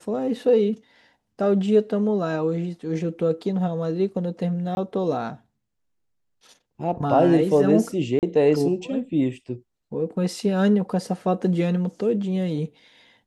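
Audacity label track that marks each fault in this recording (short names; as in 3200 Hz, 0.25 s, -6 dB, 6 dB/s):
4.750000	4.770000	gap 21 ms
8.190000	8.230000	gap 38 ms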